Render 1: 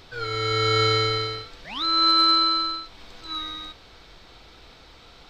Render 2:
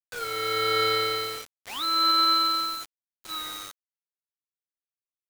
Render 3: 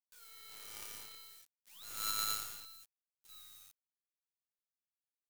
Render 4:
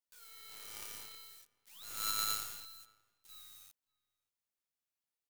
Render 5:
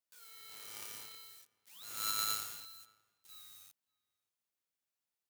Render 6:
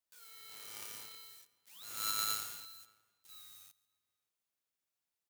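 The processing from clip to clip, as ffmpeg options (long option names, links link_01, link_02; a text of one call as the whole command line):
ffmpeg -i in.wav -filter_complex "[0:a]acrossover=split=320 5100:gain=0.158 1 0.0708[link_01][link_02][link_03];[link_01][link_02][link_03]amix=inputs=3:normalize=0,acrusher=bits=5:mix=0:aa=0.000001,volume=-1.5dB" out.wav
ffmpeg -i in.wav -af "aderivative,aeval=exprs='0.112*(cos(1*acos(clip(val(0)/0.112,-1,1)))-cos(1*PI/2))+0.00794*(cos(2*acos(clip(val(0)/0.112,-1,1)))-cos(2*PI/2))+0.0447*(cos(3*acos(clip(val(0)/0.112,-1,1)))-cos(3*PI/2))':channel_layout=same,volume=1.5dB" out.wav
ffmpeg -i in.wav -filter_complex "[0:a]asplit=2[link_01][link_02];[link_02]adelay=577.3,volume=-26dB,highshelf=frequency=4000:gain=-13[link_03];[link_01][link_03]amix=inputs=2:normalize=0,volume=1dB" out.wav
ffmpeg -i in.wav -af "highpass=82" out.wav
ffmpeg -i in.wav -af "aecho=1:1:139|278|417:0.0708|0.0311|0.0137" out.wav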